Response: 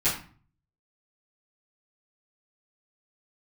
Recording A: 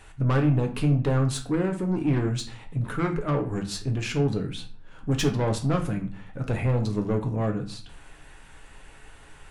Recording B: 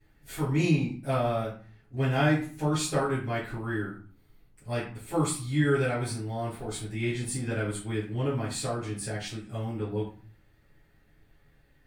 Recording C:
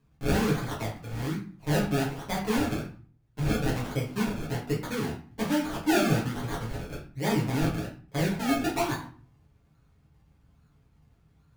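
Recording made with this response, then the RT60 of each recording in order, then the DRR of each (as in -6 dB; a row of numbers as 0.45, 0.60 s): B; 0.45, 0.40, 0.40 s; 3.5, -14.5, -6.5 dB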